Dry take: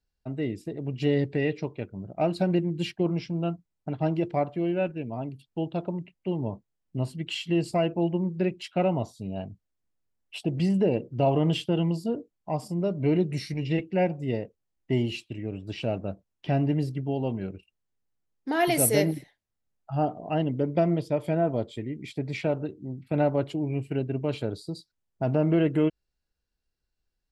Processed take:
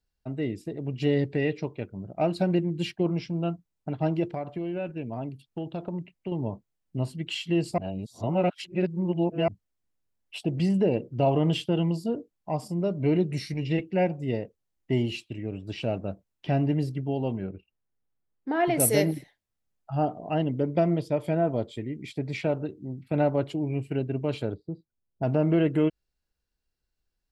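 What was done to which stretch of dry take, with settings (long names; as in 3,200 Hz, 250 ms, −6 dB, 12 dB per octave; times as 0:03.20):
0:04.24–0:06.32: downward compressor 10 to 1, threshold −27 dBFS
0:07.78–0:09.48: reverse
0:17.41–0:18.80: Bessel low-pass filter 1,800 Hz
0:24.54–0:25.23: Bessel low-pass filter 570 Hz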